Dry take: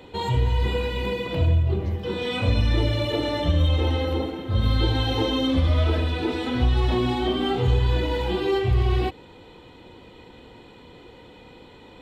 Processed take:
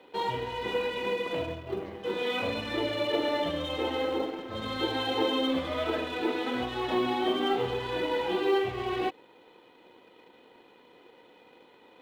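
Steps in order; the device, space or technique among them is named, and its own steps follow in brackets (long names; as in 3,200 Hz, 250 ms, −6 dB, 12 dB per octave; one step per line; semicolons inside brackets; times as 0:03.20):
phone line with mismatched companding (band-pass filter 330–3,300 Hz; mu-law and A-law mismatch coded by A)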